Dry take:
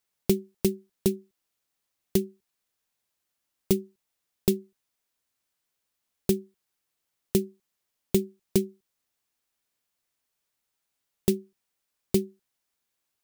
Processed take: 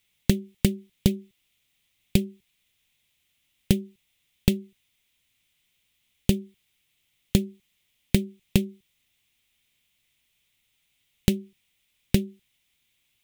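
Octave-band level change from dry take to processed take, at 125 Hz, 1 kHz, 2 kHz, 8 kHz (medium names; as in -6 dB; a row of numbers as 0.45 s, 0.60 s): +7.0 dB, +2.5 dB, +9.0 dB, 0.0 dB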